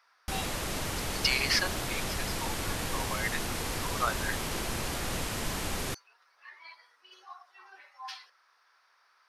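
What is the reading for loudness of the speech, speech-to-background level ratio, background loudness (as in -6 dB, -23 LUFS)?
-34.0 LUFS, -0.5 dB, -33.5 LUFS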